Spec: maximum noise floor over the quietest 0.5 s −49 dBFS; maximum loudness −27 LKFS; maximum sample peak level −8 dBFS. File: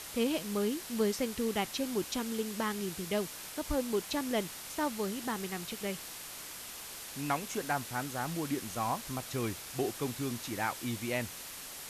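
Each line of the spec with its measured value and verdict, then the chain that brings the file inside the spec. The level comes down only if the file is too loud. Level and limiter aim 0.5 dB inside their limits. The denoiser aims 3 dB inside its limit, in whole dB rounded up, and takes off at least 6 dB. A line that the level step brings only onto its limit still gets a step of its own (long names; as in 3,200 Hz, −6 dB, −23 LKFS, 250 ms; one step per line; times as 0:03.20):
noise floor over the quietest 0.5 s −45 dBFS: out of spec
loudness −35.0 LKFS: in spec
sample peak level −19.0 dBFS: in spec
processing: broadband denoise 7 dB, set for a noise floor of −45 dBFS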